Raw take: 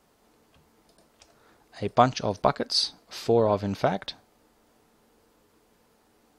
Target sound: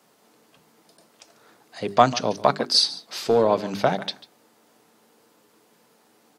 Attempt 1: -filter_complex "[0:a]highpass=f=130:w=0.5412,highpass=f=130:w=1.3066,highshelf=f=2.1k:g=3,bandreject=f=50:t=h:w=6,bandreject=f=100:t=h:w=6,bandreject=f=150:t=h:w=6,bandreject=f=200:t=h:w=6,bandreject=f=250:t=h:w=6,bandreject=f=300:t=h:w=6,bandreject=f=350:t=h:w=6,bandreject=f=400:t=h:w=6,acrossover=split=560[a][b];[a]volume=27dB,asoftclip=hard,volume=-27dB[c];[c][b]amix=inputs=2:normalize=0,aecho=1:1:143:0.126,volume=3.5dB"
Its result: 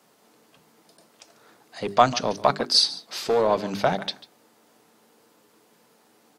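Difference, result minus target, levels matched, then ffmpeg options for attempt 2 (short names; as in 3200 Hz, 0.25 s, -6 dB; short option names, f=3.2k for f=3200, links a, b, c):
overloaded stage: distortion +10 dB
-filter_complex "[0:a]highpass=f=130:w=0.5412,highpass=f=130:w=1.3066,highshelf=f=2.1k:g=3,bandreject=f=50:t=h:w=6,bandreject=f=100:t=h:w=6,bandreject=f=150:t=h:w=6,bandreject=f=200:t=h:w=6,bandreject=f=250:t=h:w=6,bandreject=f=300:t=h:w=6,bandreject=f=350:t=h:w=6,bandreject=f=400:t=h:w=6,acrossover=split=560[a][b];[a]volume=19.5dB,asoftclip=hard,volume=-19.5dB[c];[c][b]amix=inputs=2:normalize=0,aecho=1:1:143:0.126,volume=3.5dB"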